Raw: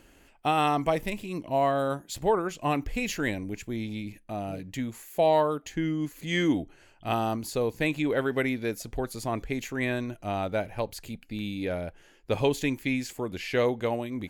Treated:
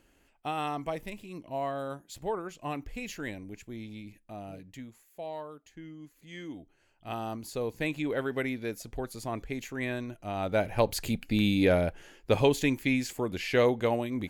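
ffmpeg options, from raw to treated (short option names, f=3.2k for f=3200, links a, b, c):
-af "volume=16.5dB,afade=t=out:st=4.56:d=0.49:silence=0.375837,afade=t=in:st=6.52:d=1.25:silence=0.237137,afade=t=in:st=10.34:d=0.7:silence=0.237137,afade=t=out:st=11.62:d=0.85:silence=0.446684"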